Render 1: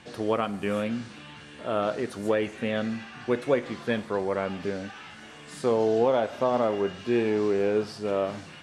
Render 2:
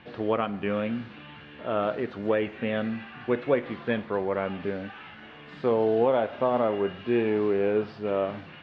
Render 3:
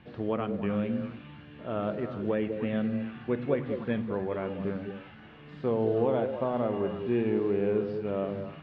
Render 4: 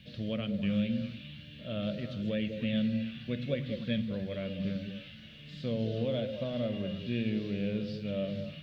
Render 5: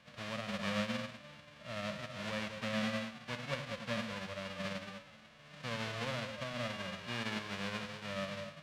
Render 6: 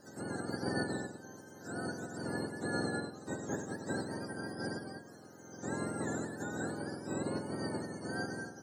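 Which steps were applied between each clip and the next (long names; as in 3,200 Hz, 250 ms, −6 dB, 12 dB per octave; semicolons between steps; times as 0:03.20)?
low-pass filter 3,300 Hz 24 dB per octave
low-shelf EQ 290 Hz +11 dB; on a send: echo through a band-pass that steps 101 ms, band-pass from 160 Hz, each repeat 1.4 octaves, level −2 dB; on the sum: level −8 dB
drawn EQ curve 210 Hz 0 dB, 400 Hz −17 dB, 580 Hz −2 dB, 830 Hz −25 dB, 3,600 Hz +12 dB; level +1 dB
spectral envelope flattened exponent 0.1; low-pass filter 2,700 Hz 12 dB per octave; level −2.5 dB
frequency axis turned over on the octave scale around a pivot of 960 Hz; flat-topped bell 3,000 Hz −10.5 dB 1.2 octaves; one half of a high-frequency compander encoder only; level +2 dB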